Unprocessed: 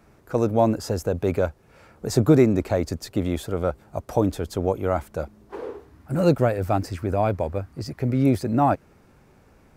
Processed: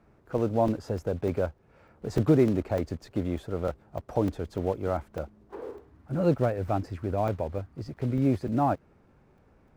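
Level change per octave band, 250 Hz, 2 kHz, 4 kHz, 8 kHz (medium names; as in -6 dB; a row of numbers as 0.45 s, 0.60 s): -5.0 dB, -7.5 dB, -10.5 dB, under -10 dB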